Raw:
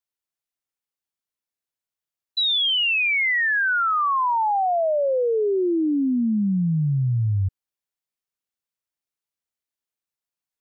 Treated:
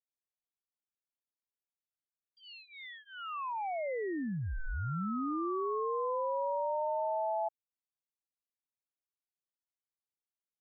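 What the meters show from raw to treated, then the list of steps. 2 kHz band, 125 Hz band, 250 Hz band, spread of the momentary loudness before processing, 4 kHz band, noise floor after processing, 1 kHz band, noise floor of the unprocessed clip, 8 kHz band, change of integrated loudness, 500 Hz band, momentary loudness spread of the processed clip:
-25.5 dB, -18.0 dB, -15.5 dB, 5 LU, -31.5 dB, under -85 dBFS, -11.0 dB, under -85 dBFS, n/a, -14.5 dB, -10.5 dB, 14 LU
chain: ring modulator 760 Hz; polynomial smoothing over 65 samples; gain -8.5 dB

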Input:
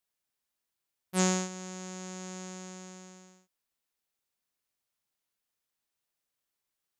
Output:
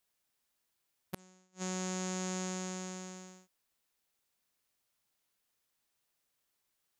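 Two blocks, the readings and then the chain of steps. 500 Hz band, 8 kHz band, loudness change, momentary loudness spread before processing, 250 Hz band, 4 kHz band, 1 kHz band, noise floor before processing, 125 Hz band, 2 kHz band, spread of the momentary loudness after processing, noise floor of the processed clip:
-4.5 dB, -4.5 dB, -5.5 dB, 20 LU, -4.5 dB, -4.5 dB, -4.5 dB, under -85 dBFS, n/a, -4.5 dB, 14 LU, -82 dBFS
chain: flipped gate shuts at -28 dBFS, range -39 dB; gain +4.5 dB

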